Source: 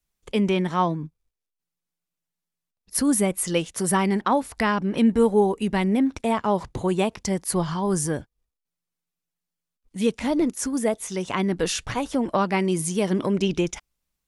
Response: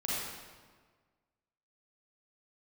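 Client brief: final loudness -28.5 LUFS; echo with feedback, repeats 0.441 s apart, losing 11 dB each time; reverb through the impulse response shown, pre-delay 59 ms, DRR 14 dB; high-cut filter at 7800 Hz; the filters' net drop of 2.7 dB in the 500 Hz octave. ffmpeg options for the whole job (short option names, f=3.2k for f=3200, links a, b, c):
-filter_complex "[0:a]lowpass=7.8k,equalizer=f=500:t=o:g=-3.5,aecho=1:1:441|882|1323:0.282|0.0789|0.0221,asplit=2[a][b];[1:a]atrim=start_sample=2205,adelay=59[c];[b][c]afir=irnorm=-1:irlink=0,volume=-20dB[d];[a][d]amix=inputs=2:normalize=0,volume=-3.5dB"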